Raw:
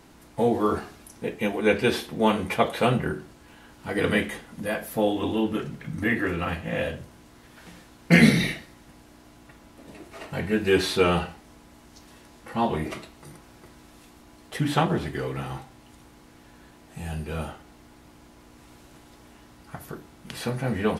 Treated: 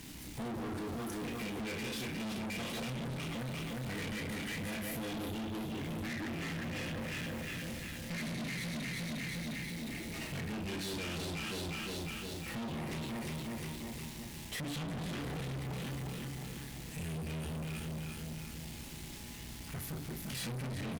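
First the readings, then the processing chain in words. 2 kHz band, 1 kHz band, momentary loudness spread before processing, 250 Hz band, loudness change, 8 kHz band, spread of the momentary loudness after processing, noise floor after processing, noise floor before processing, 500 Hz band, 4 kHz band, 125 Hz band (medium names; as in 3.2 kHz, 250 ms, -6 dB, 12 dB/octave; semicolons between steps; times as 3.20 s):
-12.0 dB, -15.5 dB, 18 LU, -12.0 dB, -14.5 dB, -3.0 dB, 5 LU, -46 dBFS, -52 dBFS, -17.0 dB, -7.5 dB, -9.0 dB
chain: echo whose repeats swap between lows and highs 178 ms, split 940 Hz, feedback 70%, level -2 dB; bit crusher 9-bit; high-order bell 760 Hz -11 dB 2.3 oct; doubling 31 ms -7 dB; compression 4:1, threshold -31 dBFS, peak gain reduction 17 dB; valve stage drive 44 dB, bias 0.45; trim +6.5 dB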